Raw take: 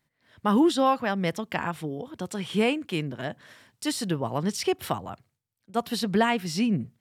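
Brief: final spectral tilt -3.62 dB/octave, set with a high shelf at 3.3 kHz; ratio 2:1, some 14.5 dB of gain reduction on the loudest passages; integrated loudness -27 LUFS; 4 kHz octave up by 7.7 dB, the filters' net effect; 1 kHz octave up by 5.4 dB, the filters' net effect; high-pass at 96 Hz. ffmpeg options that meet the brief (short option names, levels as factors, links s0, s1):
-af "highpass=96,equalizer=f=1000:t=o:g=6,highshelf=f=3300:g=4.5,equalizer=f=4000:t=o:g=6.5,acompressor=threshold=0.00891:ratio=2,volume=2.82"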